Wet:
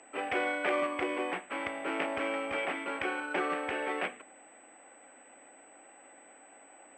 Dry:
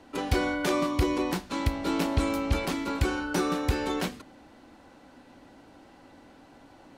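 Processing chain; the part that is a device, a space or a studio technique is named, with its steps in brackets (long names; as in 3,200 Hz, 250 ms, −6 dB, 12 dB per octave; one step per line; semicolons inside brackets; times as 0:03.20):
toy sound module (linearly interpolated sample-rate reduction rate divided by 8×; switching amplifier with a slow clock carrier 8,000 Hz; loudspeaker in its box 730–4,000 Hz, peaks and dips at 980 Hz −10 dB, 1,400 Hz −5 dB, 2,300 Hz +3 dB, 3,900 Hz −9 dB)
level +5.5 dB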